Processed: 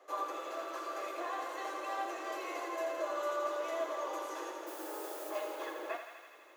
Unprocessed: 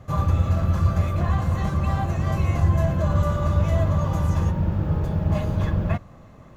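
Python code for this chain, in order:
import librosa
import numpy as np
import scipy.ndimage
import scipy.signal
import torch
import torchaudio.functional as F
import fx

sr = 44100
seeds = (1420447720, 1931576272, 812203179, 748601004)

y = fx.dmg_noise_colour(x, sr, seeds[0], colour='blue', level_db=-44.0, at=(4.66, 5.29), fade=0.02)
y = scipy.signal.sosfilt(scipy.signal.butter(12, 320.0, 'highpass', fs=sr, output='sos'), y)
y = fx.echo_thinned(y, sr, ms=82, feedback_pct=83, hz=700.0, wet_db=-7)
y = F.gain(torch.from_numpy(y), -7.5).numpy()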